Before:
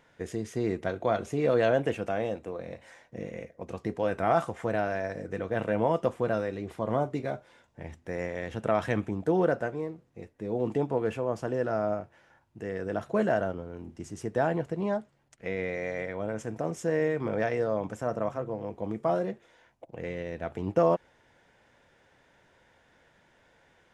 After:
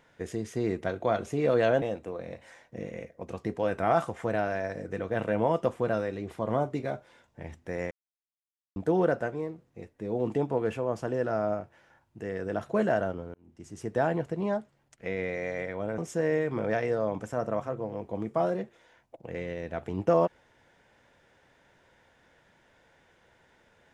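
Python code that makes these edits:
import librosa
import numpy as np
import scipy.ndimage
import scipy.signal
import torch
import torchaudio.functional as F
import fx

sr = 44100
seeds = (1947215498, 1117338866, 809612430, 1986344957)

y = fx.edit(x, sr, fx.cut(start_s=1.82, length_s=0.4),
    fx.silence(start_s=8.31, length_s=0.85),
    fx.fade_in_span(start_s=13.74, length_s=0.58),
    fx.cut(start_s=16.38, length_s=0.29), tone=tone)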